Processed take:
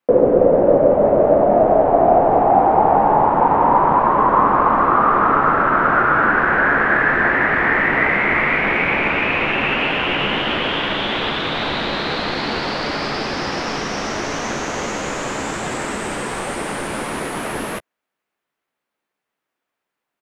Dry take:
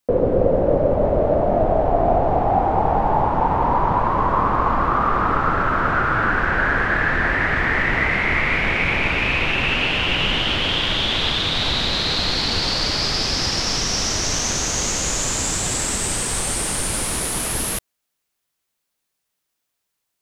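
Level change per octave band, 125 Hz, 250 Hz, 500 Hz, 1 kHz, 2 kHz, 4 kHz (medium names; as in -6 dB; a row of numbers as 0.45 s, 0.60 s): -3.5 dB, +3.5 dB, +5.0 dB, +5.0 dB, +3.0 dB, -5.0 dB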